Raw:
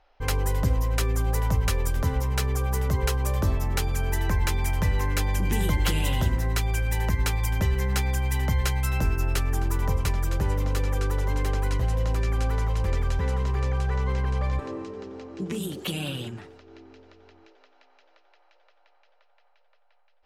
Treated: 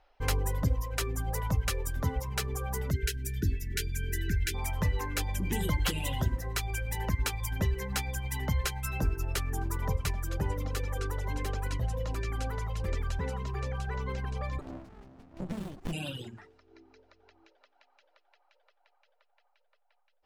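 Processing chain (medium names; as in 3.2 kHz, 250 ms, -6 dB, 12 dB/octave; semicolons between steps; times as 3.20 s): 2.91–4.54 s: spectral selection erased 450–1400 Hz; reverb removal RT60 2 s; 14.61–15.93 s: sliding maximum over 65 samples; trim -2.5 dB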